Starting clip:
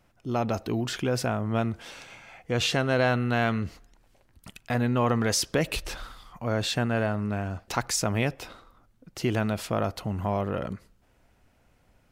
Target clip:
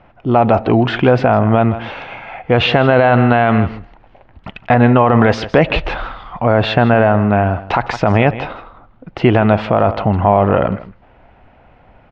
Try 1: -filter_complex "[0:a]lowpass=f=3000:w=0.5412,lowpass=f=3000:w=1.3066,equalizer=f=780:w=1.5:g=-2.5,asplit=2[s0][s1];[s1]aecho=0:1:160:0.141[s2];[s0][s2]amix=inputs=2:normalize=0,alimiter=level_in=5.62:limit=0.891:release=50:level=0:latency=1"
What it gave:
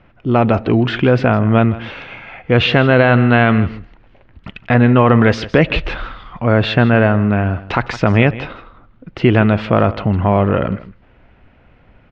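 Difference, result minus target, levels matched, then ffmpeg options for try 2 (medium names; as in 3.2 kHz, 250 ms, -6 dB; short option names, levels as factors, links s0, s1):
1 kHz band -4.0 dB
-filter_complex "[0:a]lowpass=f=3000:w=0.5412,lowpass=f=3000:w=1.3066,equalizer=f=780:w=1.5:g=7.5,asplit=2[s0][s1];[s1]aecho=0:1:160:0.141[s2];[s0][s2]amix=inputs=2:normalize=0,alimiter=level_in=5.62:limit=0.891:release=50:level=0:latency=1"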